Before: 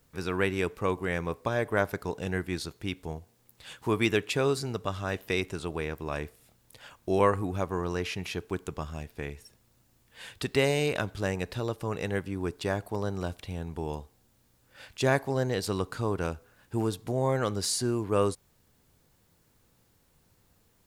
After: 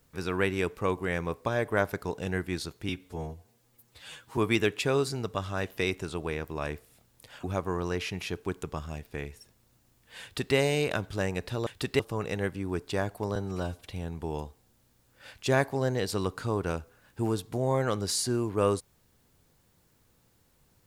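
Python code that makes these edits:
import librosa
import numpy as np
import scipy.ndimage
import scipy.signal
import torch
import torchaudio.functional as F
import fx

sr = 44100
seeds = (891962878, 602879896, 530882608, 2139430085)

y = fx.edit(x, sr, fx.stretch_span(start_s=2.89, length_s=0.99, factor=1.5),
    fx.cut(start_s=6.94, length_s=0.54),
    fx.duplicate(start_s=10.27, length_s=0.33, to_s=11.71),
    fx.stretch_span(start_s=13.07, length_s=0.34, factor=1.5), tone=tone)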